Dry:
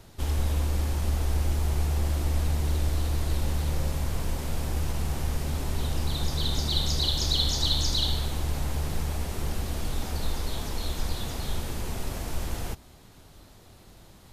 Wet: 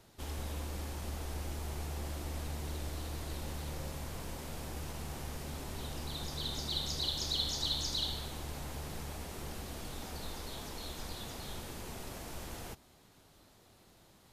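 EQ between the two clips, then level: low shelf 100 Hz -11 dB; -7.5 dB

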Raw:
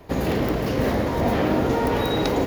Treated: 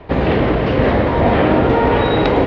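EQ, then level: LPF 3400 Hz 24 dB/oct; bell 230 Hz -3 dB 1.2 oct; +9.0 dB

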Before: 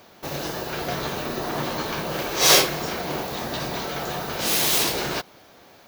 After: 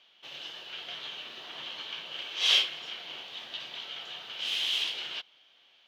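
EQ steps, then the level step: band-pass 3100 Hz, Q 7.4; tilt -2 dB/oct; +7.0 dB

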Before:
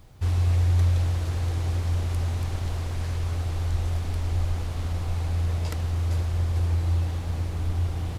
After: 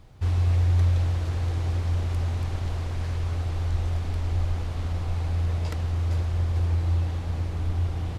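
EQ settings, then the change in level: high shelf 8000 Hz -11 dB; 0.0 dB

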